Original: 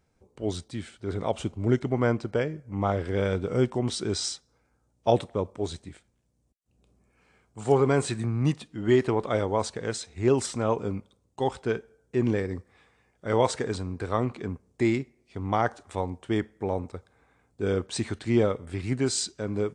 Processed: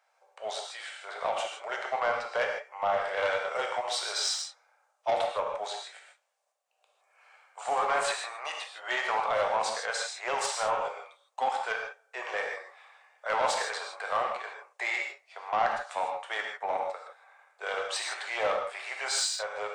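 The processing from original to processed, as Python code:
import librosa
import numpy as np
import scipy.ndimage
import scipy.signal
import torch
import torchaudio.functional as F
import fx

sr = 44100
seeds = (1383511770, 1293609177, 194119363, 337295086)

p1 = scipy.signal.sosfilt(scipy.signal.butter(8, 600.0, 'highpass', fs=sr, output='sos'), x)
p2 = fx.high_shelf(p1, sr, hz=3900.0, db=-10.0)
p3 = fx.over_compress(p2, sr, threshold_db=-33.0, ratio=-0.5)
p4 = p2 + (p3 * librosa.db_to_amplitude(-1.0))
p5 = 10.0 ** (-20.0 / 20.0) * np.tanh(p4 / 10.0 ** (-20.0 / 20.0))
p6 = fx.rev_gated(p5, sr, seeds[0], gate_ms=180, shape='flat', drr_db=0.5)
y = fx.doppler_dist(p6, sr, depth_ms=0.13)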